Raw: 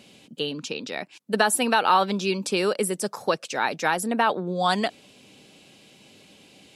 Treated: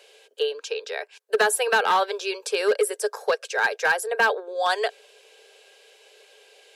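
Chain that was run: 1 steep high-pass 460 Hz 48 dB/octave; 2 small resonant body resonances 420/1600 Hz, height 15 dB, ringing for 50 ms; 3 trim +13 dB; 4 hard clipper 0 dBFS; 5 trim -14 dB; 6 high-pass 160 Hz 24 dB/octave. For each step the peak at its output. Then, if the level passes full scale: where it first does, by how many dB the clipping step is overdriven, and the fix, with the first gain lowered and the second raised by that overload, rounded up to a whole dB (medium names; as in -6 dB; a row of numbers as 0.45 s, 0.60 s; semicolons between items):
-7.5 dBFS, -4.0 dBFS, +9.0 dBFS, 0.0 dBFS, -14.0 dBFS, -8.5 dBFS; step 3, 9.0 dB; step 3 +4 dB, step 5 -5 dB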